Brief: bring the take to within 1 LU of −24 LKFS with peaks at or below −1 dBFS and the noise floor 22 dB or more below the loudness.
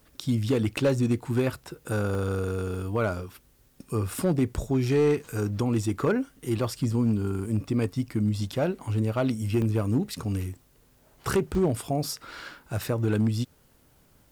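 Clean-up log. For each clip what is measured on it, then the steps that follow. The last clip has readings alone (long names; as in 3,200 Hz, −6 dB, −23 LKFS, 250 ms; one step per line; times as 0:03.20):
share of clipped samples 0.7%; peaks flattened at −17.0 dBFS; number of dropouts 6; longest dropout 1.5 ms; integrated loudness −27.5 LKFS; sample peak −17.0 dBFS; target loudness −24.0 LKFS
→ clipped peaks rebuilt −17 dBFS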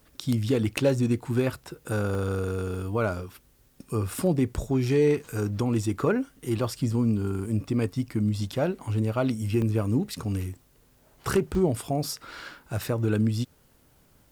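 share of clipped samples 0.0%; number of dropouts 6; longest dropout 1.5 ms
→ repair the gap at 0:02.15/0:02.75/0:04.56/0:06.46/0:09.62/0:11.55, 1.5 ms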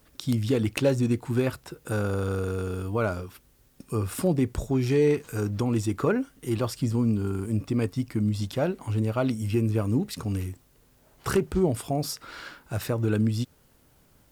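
number of dropouts 0; integrated loudness −27.5 LKFS; sample peak −8.0 dBFS; target loudness −24.0 LKFS
→ level +3.5 dB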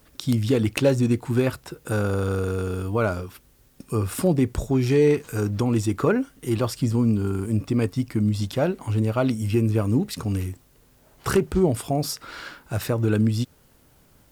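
integrated loudness −24.0 LKFS; sample peak −4.5 dBFS; background noise floor −58 dBFS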